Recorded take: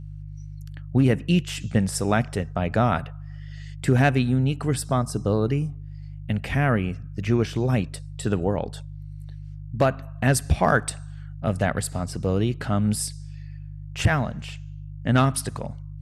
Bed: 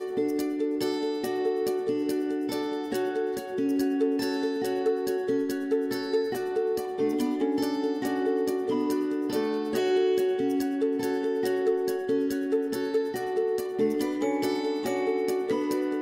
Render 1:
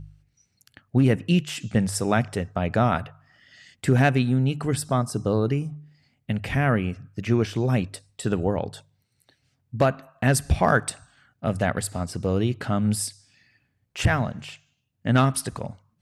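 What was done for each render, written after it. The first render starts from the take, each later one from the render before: de-hum 50 Hz, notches 3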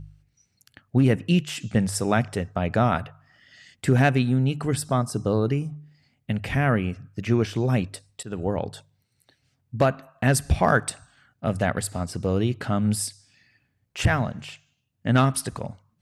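8.23–8.68 fade in equal-power, from -20 dB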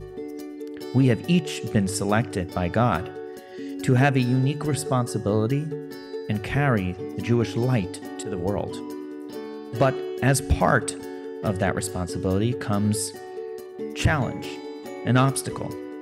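add bed -7.5 dB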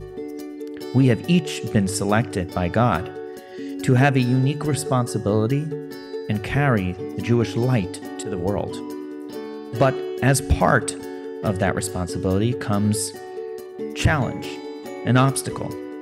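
gain +2.5 dB

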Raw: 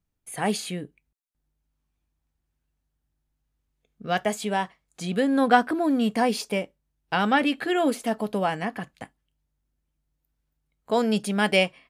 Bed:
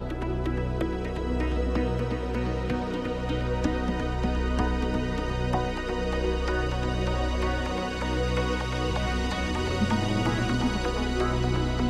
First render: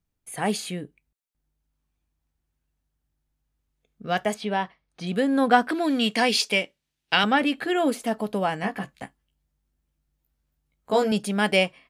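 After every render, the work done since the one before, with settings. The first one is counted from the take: 4.34–5.07 polynomial smoothing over 15 samples; 5.69–7.24 weighting filter D; 8.62–11.12 doubler 15 ms -2.5 dB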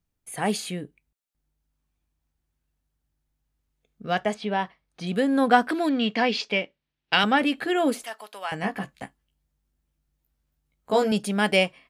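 4.15–4.59 air absorption 60 m; 5.89–7.13 air absorption 190 m; 8.04–8.52 HPF 1200 Hz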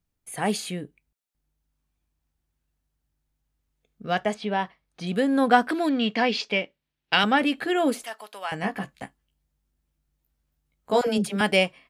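11.01–11.41 dispersion lows, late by 64 ms, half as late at 500 Hz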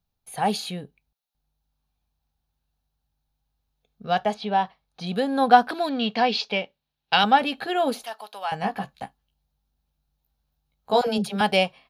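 thirty-one-band EQ 315 Hz -10 dB, 800 Hz +8 dB, 2000 Hz -7 dB, 4000 Hz +7 dB, 8000 Hz -11 dB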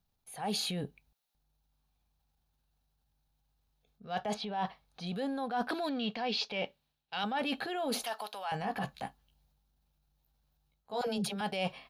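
transient shaper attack -6 dB, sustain +4 dB; reverse; compressor 6:1, threshold -32 dBFS, peak gain reduction 18.5 dB; reverse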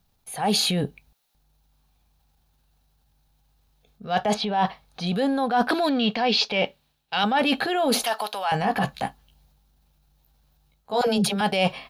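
gain +12 dB

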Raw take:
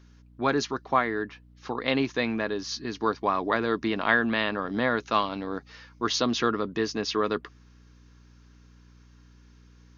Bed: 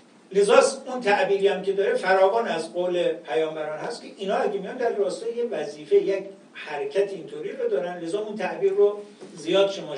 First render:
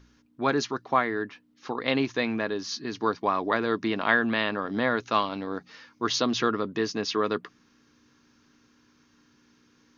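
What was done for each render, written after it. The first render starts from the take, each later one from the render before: de-hum 60 Hz, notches 3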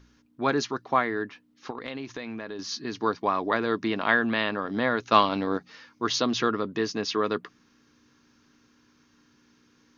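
1.7–2.59 compressor, threshold -32 dBFS; 5.12–5.57 gain +5.5 dB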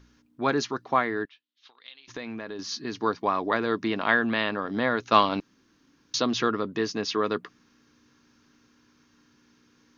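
1.25–2.08 band-pass 3500 Hz, Q 3.5; 5.4–6.14 room tone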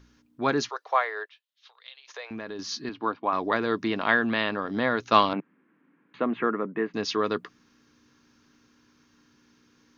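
0.69–2.31 steep high-pass 460 Hz 48 dB/oct; 2.89–3.33 speaker cabinet 160–3000 Hz, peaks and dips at 180 Hz -10 dB, 420 Hz -7 dB, 1900 Hz -8 dB; 5.33–6.94 elliptic band-pass 160–2200 Hz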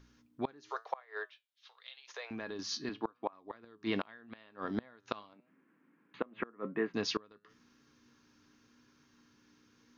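flange 0.89 Hz, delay 7.1 ms, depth 3.2 ms, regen +76%; flipped gate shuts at -20 dBFS, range -28 dB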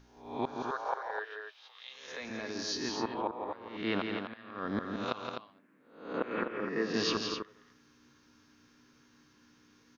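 spectral swells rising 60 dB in 0.59 s; loudspeakers at several distances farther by 58 m -6 dB, 87 m -7 dB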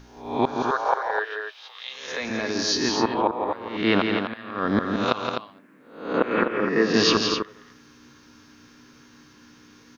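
gain +12 dB

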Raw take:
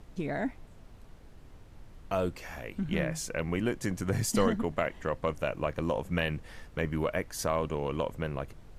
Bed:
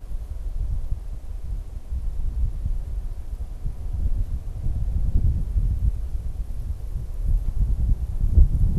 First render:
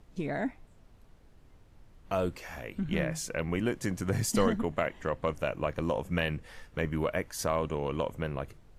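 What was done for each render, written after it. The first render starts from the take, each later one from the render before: noise print and reduce 6 dB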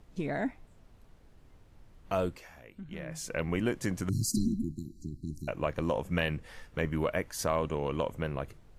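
2.2–3.35 dip -11.5 dB, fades 0.33 s; 4.09–5.48 brick-wall FIR band-stop 370–3900 Hz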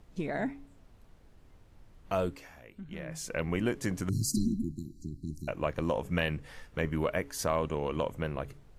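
de-hum 139.6 Hz, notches 3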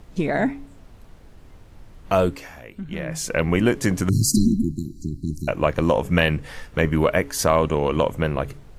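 gain +11.5 dB

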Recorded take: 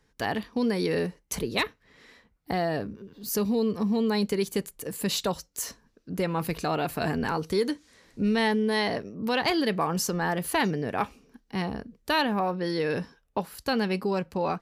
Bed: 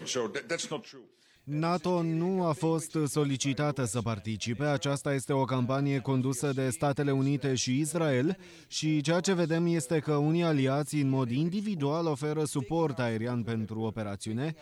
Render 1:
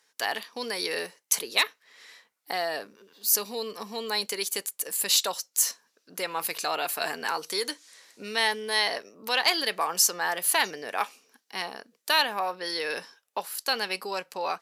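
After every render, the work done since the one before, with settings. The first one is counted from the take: HPF 620 Hz 12 dB/oct; bell 11000 Hz +10.5 dB 2.8 oct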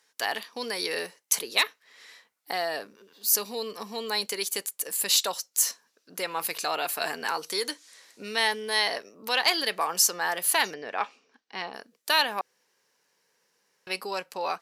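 10.74–11.74 air absorption 150 m; 12.41–13.87 room tone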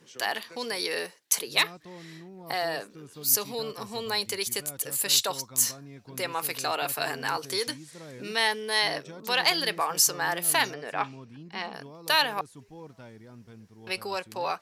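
add bed -17 dB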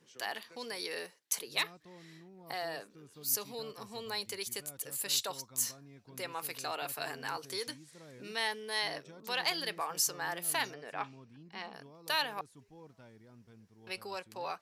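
gain -9 dB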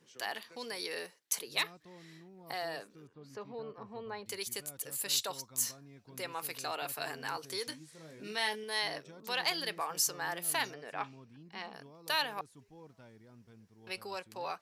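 3.07–4.26 LPF 1500 Hz; 7.7–8.64 doubler 19 ms -6.5 dB

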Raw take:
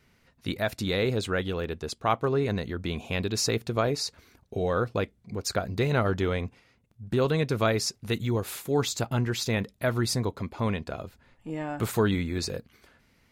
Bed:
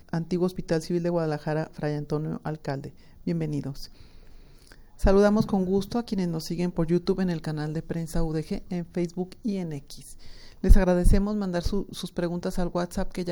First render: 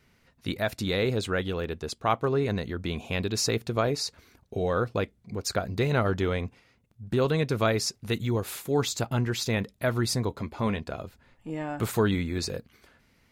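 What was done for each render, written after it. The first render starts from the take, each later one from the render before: 10.29–10.8 doubler 14 ms -9 dB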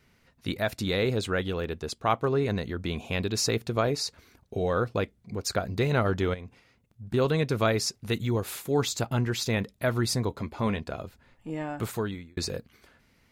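6.34–7.14 compressor, threshold -36 dBFS; 11.62–12.37 fade out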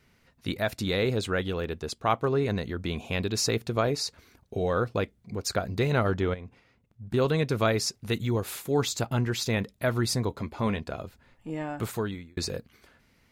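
6.14–7.11 high shelf 4100 Hz -8.5 dB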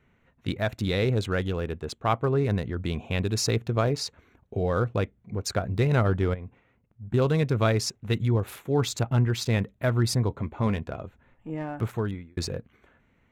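Wiener smoothing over 9 samples; dynamic EQ 110 Hz, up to +6 dB, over -42 dBFS, Q 1.2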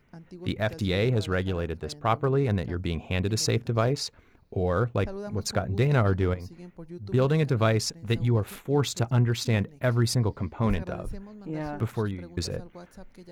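add bed -17.5 dB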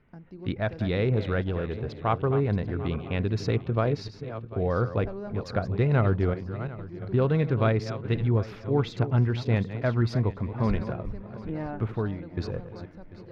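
regenerating reverse delay 0.371 s, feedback 49%, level -11.5 dB; air absorption 280 m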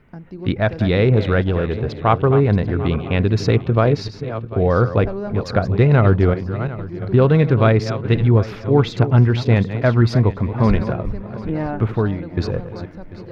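gain +10 dB; limiter -2 dBFS, peak gain reduction 2 dB

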